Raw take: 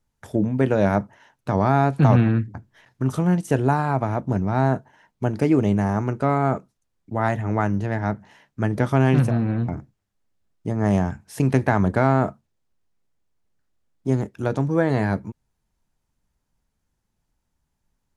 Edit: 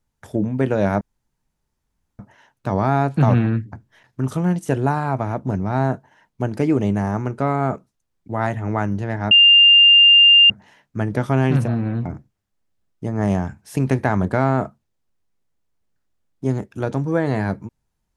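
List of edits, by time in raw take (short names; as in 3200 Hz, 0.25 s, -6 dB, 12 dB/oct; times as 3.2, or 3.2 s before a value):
1.01 insert room tone 1.18 s
8.13 add tone 2800 Hz -7 dBFS 1.19 s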